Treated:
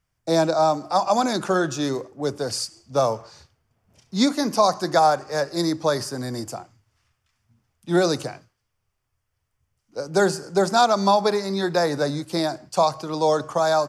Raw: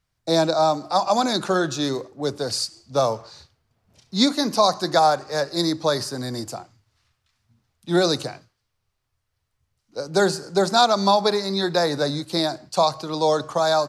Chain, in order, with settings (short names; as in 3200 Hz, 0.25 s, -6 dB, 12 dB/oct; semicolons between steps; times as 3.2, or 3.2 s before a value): bell 4000 Hz -10 dB 0.31 oct